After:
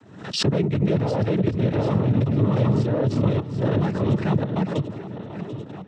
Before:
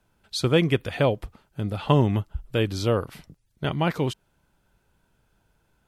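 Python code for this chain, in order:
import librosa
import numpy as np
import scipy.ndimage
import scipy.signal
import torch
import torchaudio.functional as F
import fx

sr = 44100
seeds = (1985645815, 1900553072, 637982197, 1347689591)

y = fx.reverse_delay_fb(x, sr, ms=370, feedback_pct=62, wet_db=0.0)
y = fx.highpass(y, sr, hz=230.0, slope=6)
y = fx.low_shelf(y, sr, hz=350.0, db=6.0)
y = fx.echo_swing(y, sr, ms=1126, ratio=3, feedback_pct=34, wet_db=-16)
y = 10.0 ** (-17.0 / 20.0) * np.tanh(y / 10.0 ** (-17.0 / 20.0))
y = fx.level_steps(y, sr, step_db=13)
y = fx.tilt_eq(y, sr, slope=-3.0)
y = fx.noise_vocoder(y, sr, seeds[0], bands=12)
y = fx.pre_swell(y, sr, db_per_s=77.0)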